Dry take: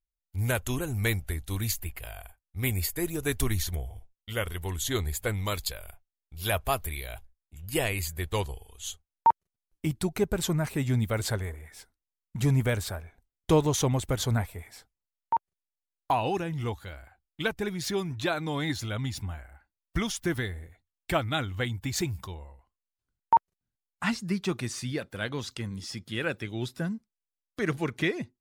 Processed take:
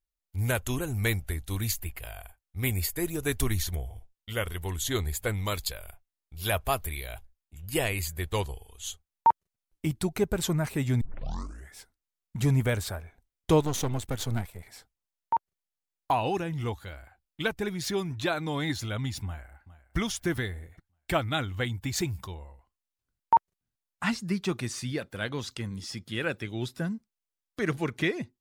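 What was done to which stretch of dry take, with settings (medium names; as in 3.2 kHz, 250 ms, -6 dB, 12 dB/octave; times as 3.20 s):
11.01 s: tape start 0.73 s
13.61–14.68 s: partial rectifier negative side -12 dB
19.25–19.97 s: echo throw 410 ms, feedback 40%, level -16 dB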